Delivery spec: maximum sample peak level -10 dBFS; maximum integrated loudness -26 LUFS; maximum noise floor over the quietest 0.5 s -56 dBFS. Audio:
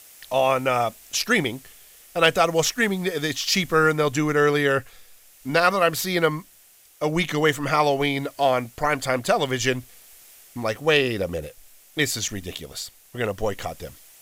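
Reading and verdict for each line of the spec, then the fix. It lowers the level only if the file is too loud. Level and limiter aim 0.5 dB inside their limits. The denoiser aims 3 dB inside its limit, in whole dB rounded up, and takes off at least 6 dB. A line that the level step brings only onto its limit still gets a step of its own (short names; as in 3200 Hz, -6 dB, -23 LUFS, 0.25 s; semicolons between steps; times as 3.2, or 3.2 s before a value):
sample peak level -4.5 dBFS: fail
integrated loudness -22.5 LUFS: fail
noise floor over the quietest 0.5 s -54 dBFS: fail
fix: gain -4 dB; limiter -10.5 dBFS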